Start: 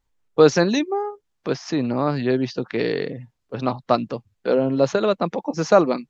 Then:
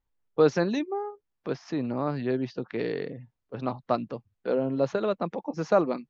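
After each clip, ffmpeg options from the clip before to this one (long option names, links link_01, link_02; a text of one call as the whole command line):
ffmpeg -i in.wav -af "lowpass=frequency=2600:poles=1,volume=-7dB" out.wav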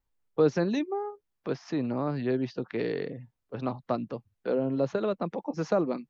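ffmpeg -i in.wav -filter_complex "[0:a]acrossover=split=460[link_01][link_02];[link_02]acompressor=threshold=-33dB:ratio=2[link_03];[link_01][link_03]amix=inputs=2:normalize=0" out.wav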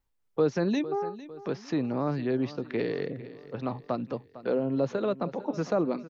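ffmpeg -i in.wav -filter_complex "[0:a]tremolo=f=2.9:d=0.29,aecho=1:1:453|906|1359|1812:0.141|0.0664|0.0312|0.0147,asplit=2[link_01][link_02];[link_02]alimiter=limit=-22.5dB:level=0:latency=1,volume=0dB[link_03];[link_01][link_03]amix=inputs=2:normalize=0,volume=-3.5dB" out.wav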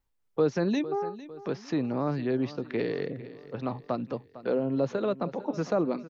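ffmpeg -i in.wav -af anull out.wav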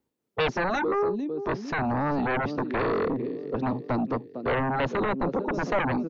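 ffmpeg -i in.wav -filter_complex "[0:a]highpass=300,acrossover=split=400|1700[link_01][link_02][link_03];[link_01]aeval=exprs='0.0668*sin(PI/2*6.31*val(0)/0.0668)':channel_layout=same[link_04];[link_04][link_02][link_03]amix=inputs=3:normalize=0" out.wav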